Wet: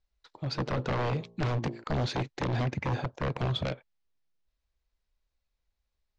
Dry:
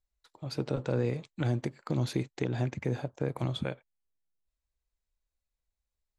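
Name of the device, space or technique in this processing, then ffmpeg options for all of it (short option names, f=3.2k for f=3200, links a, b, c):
synthesiser wavefolder: -filter_complex "[0:a]asettb=1/sr,asplit=3[a][b][c];[a]atrim=end=0.944[d];[b]atrim=start=0.94:end=1.84,asetpts=PTS-STARTPTS,afade=t=in:d=0.004:c=qsin,afade=t=out:st=0.896:d=0.004:c=qsin,bandreject=f=57.65:t=h:w=4,bandreject=f=115.3:t=h:w=4,bandreject=f=172.95:t=h:w=4,bandreject=f=230.6:t=h:w=4,bandreject=f=288.25:t=h:w=4,bandreject=f=345.9:t=h:w=4,bandreject=f=403.55:t=h:w=4,bandreject=f=461.2:t=h:w=4,bandreject=f=518.85:t=h:w=4,bandreject=f=576.5:t=h:w=4,bandreject=f=634.15:t=h:w=4,bandreject=f=691.8:t=h:w=4,bandreject=f=749.45:t=h:w=4,bandreject=f=807.1:t=h:w=4,bandreject=f=864.75:t=h:w=4,bandreject=f=922.4:t=h:w=4,bandreject=f=980.05:t=h:w=4,bandreject=f=1.0377k:t=h:w=4,bandreject=f=1.09535k:t=h:w=4[e];[c]atrim=start=1.836[f];[d][e]acrossfade=d=0.004:c1=hsin:c2=qsin[g];[g][f]acrossfade=d=0.004:c1=qsin:c2=hsin,aeval=exprs='0.0355*(abs(mod(val(0)/0.0355+3,4)-2)-1)':c=same,lowpass=f=5.7k:w=0.5412,lowpass=f=5.7k:w=1.3066,volume=5.5dB"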